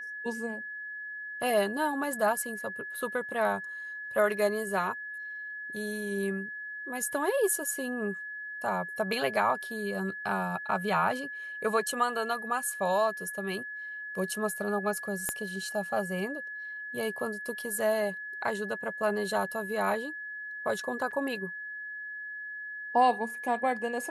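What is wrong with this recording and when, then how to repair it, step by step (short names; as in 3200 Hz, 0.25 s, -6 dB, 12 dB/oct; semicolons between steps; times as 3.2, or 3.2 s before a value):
tone 1700 Hz -37 dBFS
15.29 pop -16 dBFS
21.11–21.12 gap 6.5 ms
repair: de-click; notch 1700 Hz, Q 30; interpolate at 21.11, 6.5 ms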